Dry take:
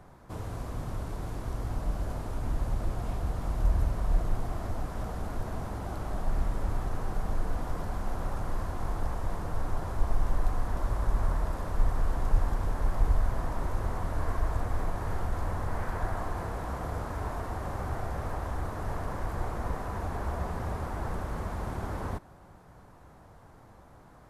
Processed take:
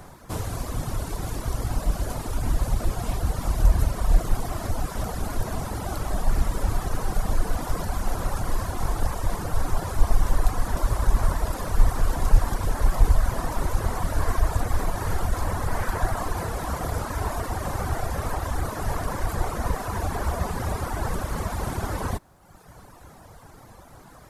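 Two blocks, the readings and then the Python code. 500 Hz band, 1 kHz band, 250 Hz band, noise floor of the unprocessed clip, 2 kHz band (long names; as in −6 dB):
+6.0 dB, +6.5 dB, +5.5 dB, −54 dBFS, +7.5 dB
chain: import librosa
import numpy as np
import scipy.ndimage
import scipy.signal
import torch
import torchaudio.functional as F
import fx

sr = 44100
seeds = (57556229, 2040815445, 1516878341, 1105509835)

y = fx.dereverb_blind(x, sr, rt60_s=1.1)
y = fx.high_shelf(y, sr, hz=3500.0, db=11.0)
y = F.gain(torch.from_numpy(y), 8.5).numpy()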